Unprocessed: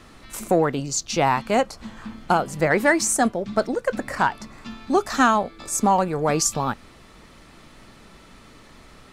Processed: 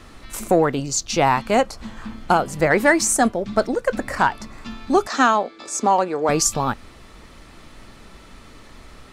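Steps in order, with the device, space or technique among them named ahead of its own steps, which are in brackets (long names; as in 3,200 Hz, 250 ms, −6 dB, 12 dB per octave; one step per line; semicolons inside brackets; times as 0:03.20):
low shelf boost with a cut just above (low-shelf EQ 83 Hz +6 dB; parametric band 160 Hz −3 dB 0.77 octaves)
0:05.07–0:06.29: Chebyshev band-pass filter 310–6,100 Hz, order 2
level +2.5 dB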